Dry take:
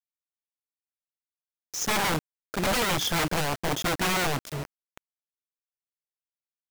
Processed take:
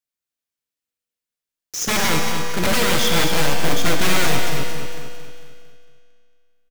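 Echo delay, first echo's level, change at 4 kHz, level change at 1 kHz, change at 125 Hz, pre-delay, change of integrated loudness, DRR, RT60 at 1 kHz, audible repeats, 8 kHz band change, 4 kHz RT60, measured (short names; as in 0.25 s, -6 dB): 0.226 s, -7.5 dB, +8.0 dB, +5.0 dB, +7.0 dB, 38 ms, +7.0 dB, 1.0 dB, 2.3 s, 5, +8.0 dB, 2.3 s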